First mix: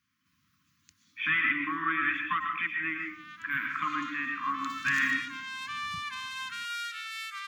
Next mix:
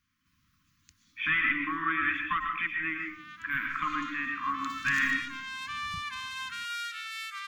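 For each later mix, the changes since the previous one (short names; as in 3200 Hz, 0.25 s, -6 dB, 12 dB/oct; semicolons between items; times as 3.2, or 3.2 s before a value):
master: remove HPF 110 Hz 12 dB/oct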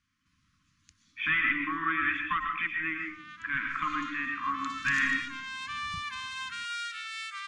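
master: add steep low-pass 9900 Hz 96 dB/oct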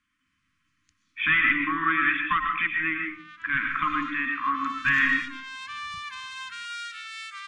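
speech +5.5 dB; first sound -8.0 dB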